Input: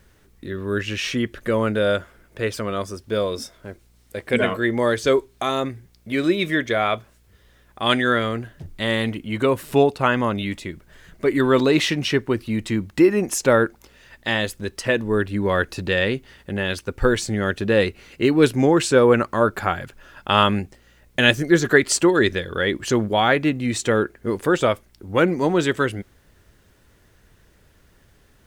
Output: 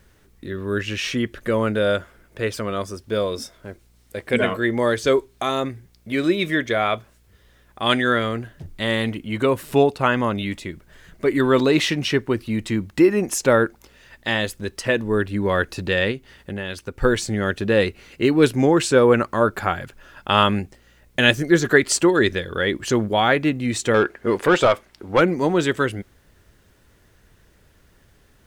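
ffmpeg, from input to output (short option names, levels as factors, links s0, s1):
-filter_complex "[0:a]asettb=1/sr,asplit=3[s0][s1][s2];[s0]atrim=end=16.114[s3];[s1]atrim=start=16.11:end=17.03,asetpts=PTS-STARTPTS,afade=t=in:d=0.004:c=qsin,afade=t=out:st=0.916:d=0.004:c=qsin,acompressor=threshold=0.0398:ratio=2.5[s4];[s2]atrim=start=17.026[s5];[s3][s4]acrossfade=d=0.004:c1=hsin:c2=qsin[s6];[s6][s5]acrossfade=d=0.004:c1=qsin:c2=hsin,asettb=1/sr,asplit=3[s7][s8][s9];[s7]atrim=end=23.944[s10];[s8]atrim=start=23.94:end=25.21,asetpts=PTS-STARTPTS,afade=t=in:d=0.004:c=qsin,afade=t=out:st=1.266:d=0.004:c=qsin,asplit=2[s11][s12];[s12]highpass=f=720:p=1,volume=6.31,asoftclip=type=tanh:threshold=0.501[s13];[s11][s13]amix=inputs=2:normalize=0,lowpass=f=2500:p=1,volume=0.501[s14];[s9]atrim=start=25.206[s15];[s10][s14]acrossfade=d=0.004:c1=hsin:c2=qsin[s16];[s16][s15]acrossfade=d=0.004:c1=qsin:c2=hsin"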